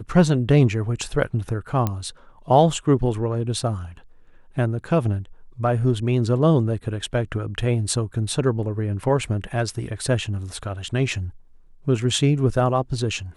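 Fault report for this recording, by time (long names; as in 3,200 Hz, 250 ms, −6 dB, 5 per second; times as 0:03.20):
0:01.87: click −10 dBFS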